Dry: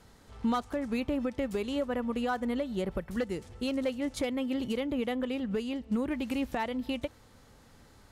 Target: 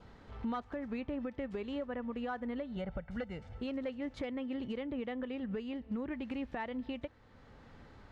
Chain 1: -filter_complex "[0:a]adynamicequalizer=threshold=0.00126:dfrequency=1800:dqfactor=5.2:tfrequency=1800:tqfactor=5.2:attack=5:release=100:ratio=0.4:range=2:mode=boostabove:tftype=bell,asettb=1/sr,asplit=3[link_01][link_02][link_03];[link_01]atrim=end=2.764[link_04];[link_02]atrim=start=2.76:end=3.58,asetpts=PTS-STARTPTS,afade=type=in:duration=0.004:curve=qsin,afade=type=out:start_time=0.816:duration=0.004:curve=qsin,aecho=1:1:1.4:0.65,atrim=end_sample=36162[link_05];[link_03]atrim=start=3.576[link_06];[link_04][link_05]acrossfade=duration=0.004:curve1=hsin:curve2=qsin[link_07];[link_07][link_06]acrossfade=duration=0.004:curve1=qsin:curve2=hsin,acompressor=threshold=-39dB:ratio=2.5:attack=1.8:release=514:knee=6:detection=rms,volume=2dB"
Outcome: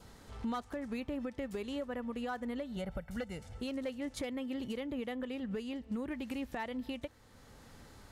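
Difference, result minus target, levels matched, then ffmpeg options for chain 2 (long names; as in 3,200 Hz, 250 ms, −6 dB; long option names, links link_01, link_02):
4,000 Hz band +4.0 dB
-filter_complex "[0:a]adynamicequalizer=threshold=0.00126:dfrequency=1800:dqfactor=5.2:tfrequency=1800:tqfactor=5.2:attack=5:release=100:ratio=0.4:range=2:mode=boostabove:tftype=bell,lowpass=2900,asettb=1/sr,asplit=3[link_01][link_02][link_03];[link_01]atrim=end=2.764[link_04];[link_02]atrim=start=2.76:end=3.58,asetpts=PTS-STARTPTS,afade=type=in:duration=0.004:curve=qsin,afade=type=out:start_time=0.816:duration=0.004:curve=qsin,aecho=1:1:1.4:0.65,atrim=end_sample=36162[link_05];[link_03]atrim=start=3.576[link_06];[link_04][link_05]acrossfade=duration=0.004:curve1=hsin:curve2=qsin[link_07];[link_07][link_06]acrossfade=duration=0.004:curve1=qsin:curve2=hsin,acompressor=threshold=-39dB:ratio=2.5:attack=1.8:release=514:knee=6:detection=rms,volume=2dB"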